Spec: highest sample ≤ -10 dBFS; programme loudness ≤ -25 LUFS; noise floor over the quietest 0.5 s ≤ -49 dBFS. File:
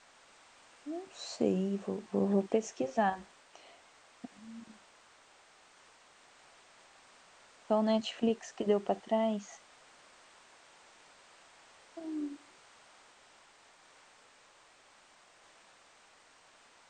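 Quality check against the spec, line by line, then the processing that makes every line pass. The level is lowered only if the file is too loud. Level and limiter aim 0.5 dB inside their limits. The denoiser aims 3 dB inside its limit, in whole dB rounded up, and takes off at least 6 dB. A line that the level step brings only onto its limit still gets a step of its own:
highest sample -16.0 dBFS: pass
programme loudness -33.5 LUFS: pass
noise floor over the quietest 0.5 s -62 dBFS: pass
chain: none needed

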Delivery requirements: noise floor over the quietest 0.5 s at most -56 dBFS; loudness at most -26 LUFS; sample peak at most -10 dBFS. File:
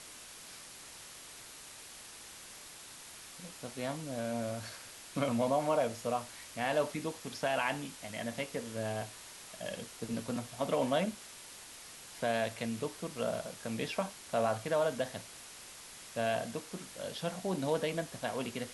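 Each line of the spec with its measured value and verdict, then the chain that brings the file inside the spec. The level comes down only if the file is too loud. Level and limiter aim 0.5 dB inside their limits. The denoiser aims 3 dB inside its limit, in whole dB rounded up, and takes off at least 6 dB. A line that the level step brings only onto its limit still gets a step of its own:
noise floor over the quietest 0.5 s -51 dBFS: fail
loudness -36.0 LUFS: pass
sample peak -17.5 dBFS: pass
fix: noise reduction 8 dB, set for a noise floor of -51 dBFS

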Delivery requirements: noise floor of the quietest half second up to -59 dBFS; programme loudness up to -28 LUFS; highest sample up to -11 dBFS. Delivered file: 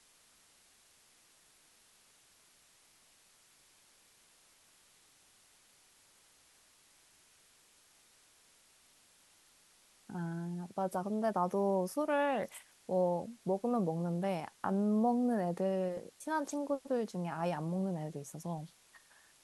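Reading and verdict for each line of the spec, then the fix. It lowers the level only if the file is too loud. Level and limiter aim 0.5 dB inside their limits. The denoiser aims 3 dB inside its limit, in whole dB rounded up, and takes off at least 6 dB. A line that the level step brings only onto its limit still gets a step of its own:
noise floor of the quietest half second -66 dBFS: pass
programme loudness -35.0 LUFS: pass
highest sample -19.5 dBFS: pass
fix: none needed

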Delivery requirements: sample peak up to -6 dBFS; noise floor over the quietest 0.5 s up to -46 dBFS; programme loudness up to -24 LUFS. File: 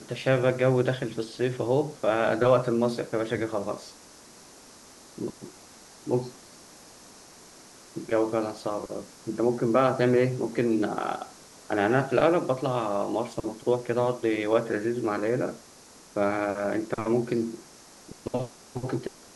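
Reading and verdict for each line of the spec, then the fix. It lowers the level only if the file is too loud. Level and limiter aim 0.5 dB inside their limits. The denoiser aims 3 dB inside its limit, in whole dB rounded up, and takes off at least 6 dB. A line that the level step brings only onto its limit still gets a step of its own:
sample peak -8.0 dBFS: pass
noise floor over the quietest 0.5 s -51 dBFS: pass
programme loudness -27.0 LUFS: pass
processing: none needed

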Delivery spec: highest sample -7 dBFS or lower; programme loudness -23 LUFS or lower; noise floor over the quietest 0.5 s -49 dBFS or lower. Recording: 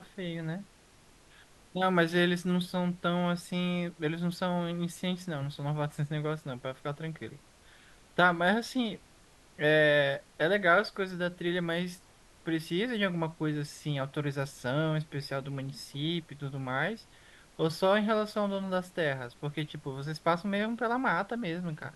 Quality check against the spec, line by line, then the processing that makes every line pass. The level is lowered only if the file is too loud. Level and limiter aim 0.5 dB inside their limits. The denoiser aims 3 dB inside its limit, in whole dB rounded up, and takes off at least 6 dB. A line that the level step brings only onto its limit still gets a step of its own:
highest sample -11.5 dBFS: pass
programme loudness -31.0 LUFS: pass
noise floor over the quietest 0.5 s -59 dBFS: pass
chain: none needed

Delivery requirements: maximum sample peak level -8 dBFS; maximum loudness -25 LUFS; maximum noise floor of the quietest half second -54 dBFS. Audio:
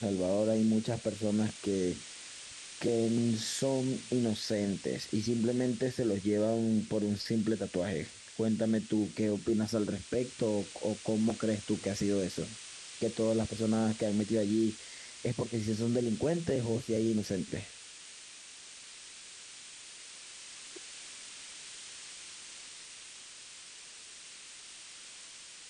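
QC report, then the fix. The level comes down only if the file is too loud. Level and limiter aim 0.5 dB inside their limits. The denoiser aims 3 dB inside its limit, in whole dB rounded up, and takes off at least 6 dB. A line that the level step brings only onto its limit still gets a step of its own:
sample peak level -19.0 dBFS: pass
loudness -32.5 LUFS: pass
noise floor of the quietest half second -50 dBFS: fail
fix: noise reduction 7 dB, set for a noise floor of -50 dBFS

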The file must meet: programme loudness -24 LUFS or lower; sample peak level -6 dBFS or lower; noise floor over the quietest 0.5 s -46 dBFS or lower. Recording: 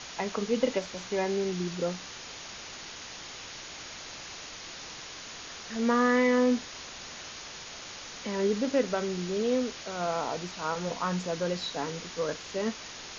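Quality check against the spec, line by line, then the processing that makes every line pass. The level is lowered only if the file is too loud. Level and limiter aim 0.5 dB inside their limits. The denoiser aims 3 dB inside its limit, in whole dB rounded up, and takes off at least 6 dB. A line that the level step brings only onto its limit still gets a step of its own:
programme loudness -31.5 LUFS: pass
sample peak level -12.5 dBFS: pass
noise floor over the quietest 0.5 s -43 dBFS: fail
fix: noise reduction 6 dB, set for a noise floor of -43 dBFS

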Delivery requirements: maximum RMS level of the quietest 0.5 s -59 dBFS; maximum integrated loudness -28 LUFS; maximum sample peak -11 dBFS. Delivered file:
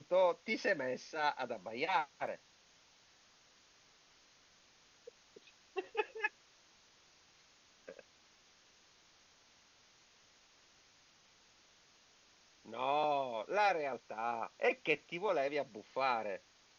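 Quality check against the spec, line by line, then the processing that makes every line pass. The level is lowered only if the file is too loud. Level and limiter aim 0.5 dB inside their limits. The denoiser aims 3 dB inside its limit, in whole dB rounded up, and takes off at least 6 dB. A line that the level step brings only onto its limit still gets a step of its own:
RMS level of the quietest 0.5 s -67 dBFS: pass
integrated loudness -37.0 LUFS: pass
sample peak -18.0 dBFS: pass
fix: none needed

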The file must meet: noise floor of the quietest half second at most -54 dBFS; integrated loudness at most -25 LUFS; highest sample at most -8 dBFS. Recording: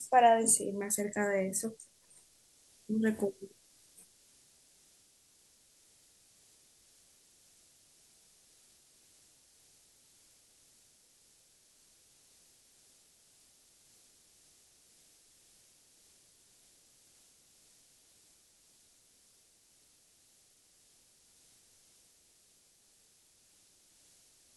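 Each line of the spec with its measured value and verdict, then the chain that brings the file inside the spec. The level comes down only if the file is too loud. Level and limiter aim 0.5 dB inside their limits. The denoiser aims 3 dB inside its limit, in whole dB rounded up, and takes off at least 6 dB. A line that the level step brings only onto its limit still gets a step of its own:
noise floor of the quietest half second -67 dBFS: pass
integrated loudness -30.0 LUFS: pass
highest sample -13.0 dBFS: pass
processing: none needed

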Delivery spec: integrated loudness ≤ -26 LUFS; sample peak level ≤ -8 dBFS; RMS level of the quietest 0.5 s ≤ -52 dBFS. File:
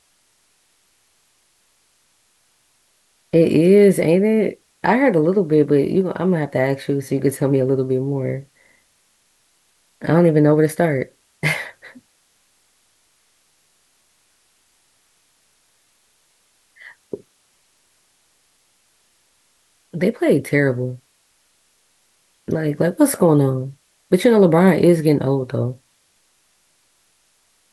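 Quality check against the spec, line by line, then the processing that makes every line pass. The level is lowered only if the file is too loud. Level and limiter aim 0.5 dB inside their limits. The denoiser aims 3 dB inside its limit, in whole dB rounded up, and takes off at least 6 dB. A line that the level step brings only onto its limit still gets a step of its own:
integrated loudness -17.5 LUFS: fail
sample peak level -3.0 dBFS: fail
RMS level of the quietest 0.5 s -62 dBFS: pass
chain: trim -9 dB

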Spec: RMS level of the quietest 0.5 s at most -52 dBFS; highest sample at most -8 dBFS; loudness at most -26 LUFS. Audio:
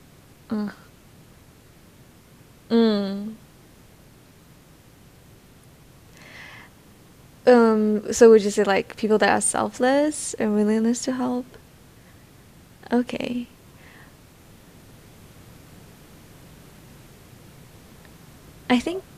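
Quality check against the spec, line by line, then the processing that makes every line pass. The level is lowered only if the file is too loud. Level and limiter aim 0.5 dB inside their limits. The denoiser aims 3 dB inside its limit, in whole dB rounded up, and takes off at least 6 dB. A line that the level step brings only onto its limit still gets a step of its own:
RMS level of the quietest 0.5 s -51 dBFS: fail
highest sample -3.0 dBFS: fail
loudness -21.0 LUFS: fail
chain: trim -5.5 dB

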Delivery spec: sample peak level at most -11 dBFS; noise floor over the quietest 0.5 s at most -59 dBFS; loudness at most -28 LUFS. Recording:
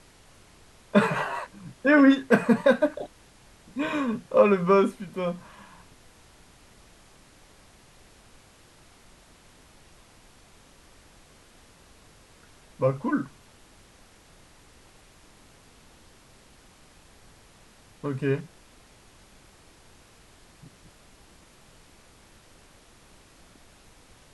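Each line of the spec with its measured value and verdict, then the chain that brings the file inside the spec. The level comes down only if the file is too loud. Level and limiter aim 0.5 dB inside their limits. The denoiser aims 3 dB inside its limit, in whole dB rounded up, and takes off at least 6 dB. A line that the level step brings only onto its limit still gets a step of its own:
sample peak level -5.0 dBFS: fail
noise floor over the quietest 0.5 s -55 dBFS: fail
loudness -24.0 LUFS: fail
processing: trim -4.5 dB; peak limiter -11.5 dBFS

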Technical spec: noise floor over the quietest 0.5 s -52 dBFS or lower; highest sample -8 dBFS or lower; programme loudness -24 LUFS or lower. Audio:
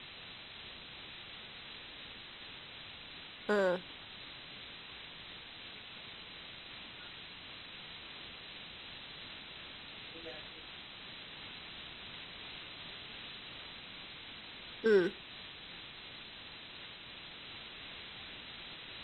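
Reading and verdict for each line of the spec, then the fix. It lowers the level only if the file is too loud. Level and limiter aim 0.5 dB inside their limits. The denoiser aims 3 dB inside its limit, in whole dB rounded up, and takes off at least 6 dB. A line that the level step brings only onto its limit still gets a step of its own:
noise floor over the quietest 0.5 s -50 dBFS: fail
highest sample -16.5 dBFS: pass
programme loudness -42.5 LUFS: pass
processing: noise reduction 6 dB, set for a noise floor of -50 dBFS

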